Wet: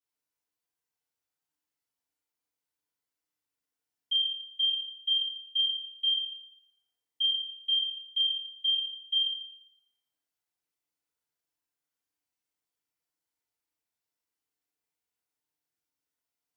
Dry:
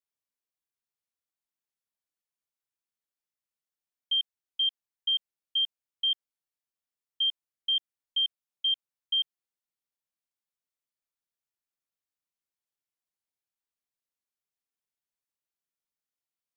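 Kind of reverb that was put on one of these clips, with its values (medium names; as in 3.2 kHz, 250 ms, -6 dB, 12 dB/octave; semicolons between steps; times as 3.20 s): FDN reverb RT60 1.2 s, low-frequency decay 0.75×, high-frequency decay 0.65×, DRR -10 dB; trim -6.5 dB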